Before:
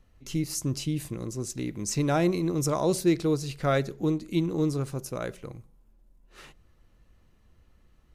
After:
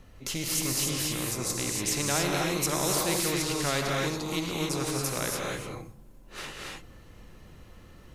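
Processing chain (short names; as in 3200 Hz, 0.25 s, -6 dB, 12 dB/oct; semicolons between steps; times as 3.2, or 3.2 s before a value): non-linear reverb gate 0.31 s rising, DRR -0.5 dB; spectral compressor 2:1; gain -3.5 dB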